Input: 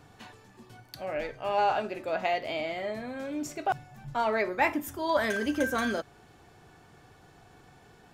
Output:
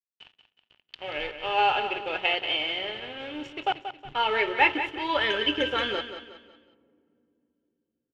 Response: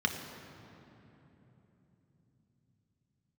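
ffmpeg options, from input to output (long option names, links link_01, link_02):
-filter_complex "[0:a]aecho=1:1:2.3:0.64,acrusher=bits=6:mode=log:mix=0:aa=0.000001,aeval=exprs='sgn(val(0))*max(abs(val(0))-0.0075,0)':channel_layout=same,lowpass=frequency=3000:width_type=q:width=8.1,aecho=1:1:183|366|549|732:0.316|0.123|0.0481|0.0188,asplit=2[link_01][link_02];[1:a]atrim=start_sample=2205,asetrate=57330,aresample=44100[link_03];[link_02][link_03]afir=irnorm=-1:irlink=0,volume=-25.5dB[link_04];[link_01][link_04]amix=inputs=2:normalize=0"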